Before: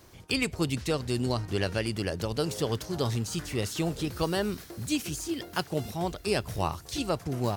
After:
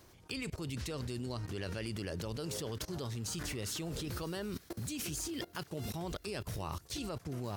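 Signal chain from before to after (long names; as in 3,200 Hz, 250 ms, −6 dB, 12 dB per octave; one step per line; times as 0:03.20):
dynamic equaliser 750 Hz, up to −4 dB, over −48 dBFS, Q 3.1
output level in coarse steps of 21 dB
level +3 dB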